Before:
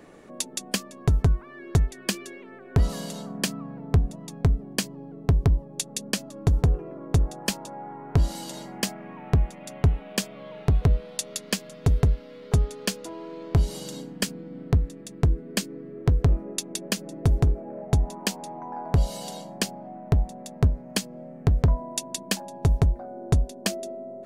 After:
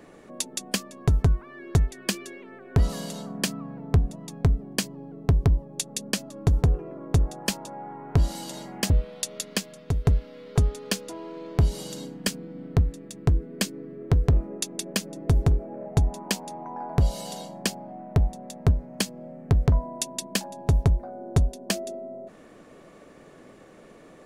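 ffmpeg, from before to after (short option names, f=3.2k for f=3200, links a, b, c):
-filter_complex "[0:a]asplit=3[a][b][c];[a]atrim=end=8.902[d];[b]atrim=start=10.858:end=12.01,asetpts=PTS-STARTPTS,afade=t=out:st=0.582:d=0.57:silence=0.446684[e];[c]atrim=start=12.01,asetpts=PTS-STARTPTS,afade=t=in:d=0.004:c=hsin:silence=0.446684[f];[e][f]concat=n=2:v=0:a=1[g];[d][g]acrossfade=d=0.004:c1=hsin:c2=hsin"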